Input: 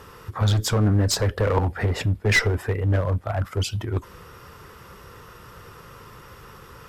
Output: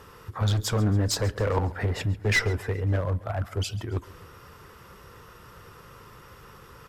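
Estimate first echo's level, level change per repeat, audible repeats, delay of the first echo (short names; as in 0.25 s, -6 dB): -20.0 dB, -5.5 dB, 3, 0.137 s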